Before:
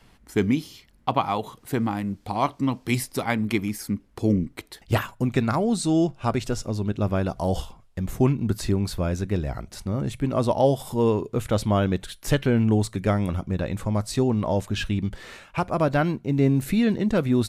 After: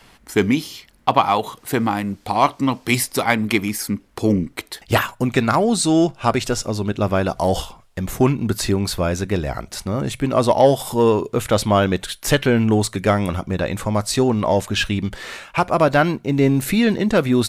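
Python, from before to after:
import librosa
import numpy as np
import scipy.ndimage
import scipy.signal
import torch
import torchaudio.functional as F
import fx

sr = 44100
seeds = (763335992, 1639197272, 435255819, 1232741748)

p1 = fx.low_shelf(x, sr, hz=330.0, db=-9.0)
p2 = 10.0 ** (-19.0 / 20.0) * np.tanh(p1 / 10.0 ** (-19.0 / 20.0))
p3 = p1 + (p2 * 10.0 ** (-5.5 / 20.0))
y = p3 * 10.0 ** (6.5 / 20.0)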